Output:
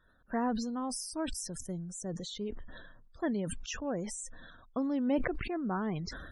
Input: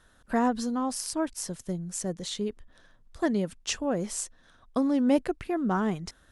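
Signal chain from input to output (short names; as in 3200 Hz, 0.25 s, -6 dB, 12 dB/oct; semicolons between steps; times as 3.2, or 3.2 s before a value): loudest bins only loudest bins 64; sustainer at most 38 dB/s; gain -7 dB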